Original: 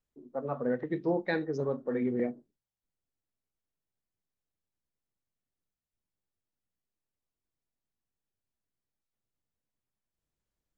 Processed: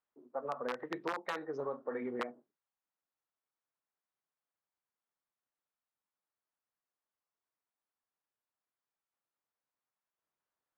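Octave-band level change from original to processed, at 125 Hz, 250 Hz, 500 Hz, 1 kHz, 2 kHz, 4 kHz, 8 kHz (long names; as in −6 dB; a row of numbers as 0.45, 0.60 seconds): −17.5 dB, −12.0 dB, −7.5 dB, +1.0 dB, −4.0 dB, +1.0 dB, can't be measured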